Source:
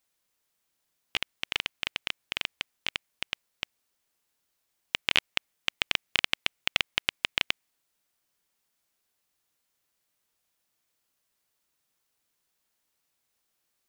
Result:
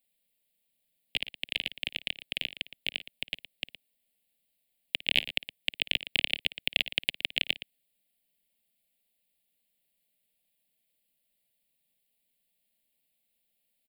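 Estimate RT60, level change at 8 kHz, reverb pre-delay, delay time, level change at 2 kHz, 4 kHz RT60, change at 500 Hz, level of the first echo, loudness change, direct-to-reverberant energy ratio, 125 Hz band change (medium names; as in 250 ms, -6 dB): no reverb, -7.5 dB, no reverb, 55 ms, -1.5 dB, no reverb, -2.5 dB, -19.0 dB, -0.5 dB, no reverb, -2.0 dB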